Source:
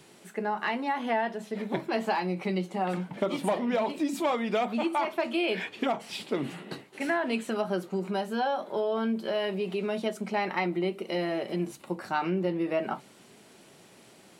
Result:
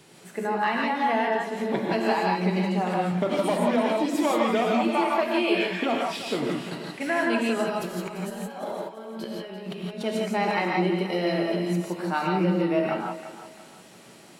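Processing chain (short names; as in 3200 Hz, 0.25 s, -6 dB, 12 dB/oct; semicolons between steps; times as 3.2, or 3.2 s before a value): 7.67–10.03 negative-ratio compressor -41 dBFS, ratio -1; thinning echo 0.343 s, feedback 38%, high-pass 340 Hz, level -12 dB; non-linear reverb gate 0.19 s rising, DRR -1.5 dB; gain +1 dB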